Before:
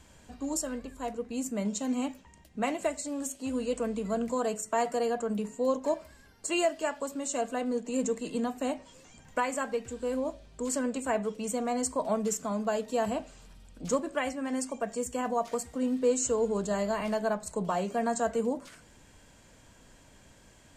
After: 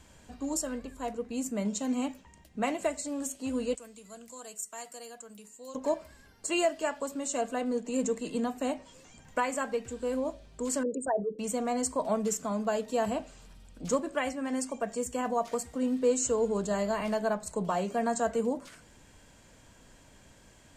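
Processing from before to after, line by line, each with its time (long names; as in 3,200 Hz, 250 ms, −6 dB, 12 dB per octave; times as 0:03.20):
0:03.75–0:05.75: first-order pre-emphasis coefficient 0.9
0:10.83–0:11.39: spectral envelope exaggerated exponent 3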